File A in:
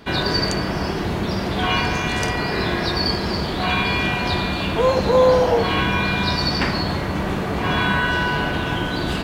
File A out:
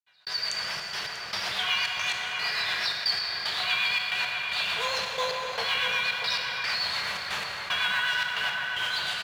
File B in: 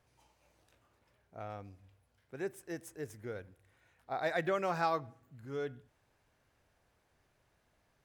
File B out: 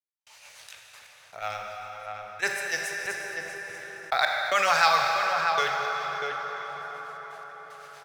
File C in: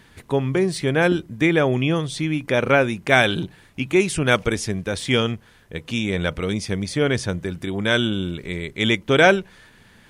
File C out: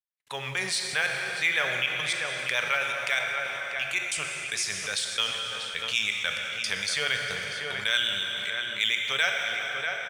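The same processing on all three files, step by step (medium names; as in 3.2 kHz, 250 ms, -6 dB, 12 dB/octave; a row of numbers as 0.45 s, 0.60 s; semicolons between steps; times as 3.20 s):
frequency weighting A; gate -42 dBFS, range -20 dB; amplifier tone stack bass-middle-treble 10-0-10; level rider gain up to 12 dB; trance gate "..xxxx.x" 113 bpm -60 dB; rotary cabinet horn 8 Hz; short-mantissa float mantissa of 4-bit; echo from a far wall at 110 m, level -9 dB; plate-style reverb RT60 3.5 s, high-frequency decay 0.7×, DRR 5.5 dB; level flattener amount 50%; normalise loudness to -27 LUFS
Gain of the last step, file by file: -12.0 dB, +10.0 dB, -8.5 dB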